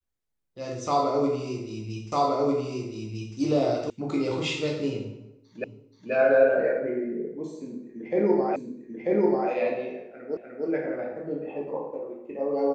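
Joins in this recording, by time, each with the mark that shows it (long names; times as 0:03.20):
0:02.12: the same again, the last 1.25 s
0:03.90: cut off before it has died away
0:05.64: the same again, the last 0.48 s
0:08.56: the same again, the last 0.94 s
0:10.37: the same again, the last 0.3 s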